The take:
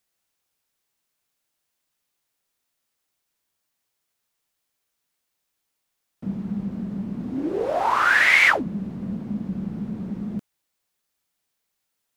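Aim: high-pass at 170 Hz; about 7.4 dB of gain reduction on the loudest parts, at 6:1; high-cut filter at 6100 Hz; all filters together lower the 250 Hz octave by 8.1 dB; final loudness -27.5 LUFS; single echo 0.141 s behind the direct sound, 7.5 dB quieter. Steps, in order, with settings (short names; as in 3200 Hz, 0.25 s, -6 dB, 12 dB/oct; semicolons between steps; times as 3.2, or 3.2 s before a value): HPF 170 Hz; LPF 6100 Hz; bell 250 Hz -9 dB; compressor 6:1, threshold -20 dBFS; echo 0.141 s -7.5 dB; gain -0.5 dB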